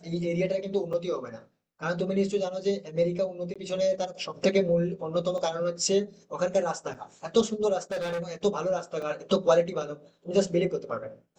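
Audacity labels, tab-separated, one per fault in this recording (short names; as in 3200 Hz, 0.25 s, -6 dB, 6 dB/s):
0.930000	0.930000	gap 4.7 ms
3.540000	3.560000	gap 16 ms
5.380000	5.380000	gap 2.3 ms
6.940000	6.950000	gap 6.3 ms
7.910000	8.330000	clipped -28 dBFS
9.020000	9.020000	gap 3.9 ms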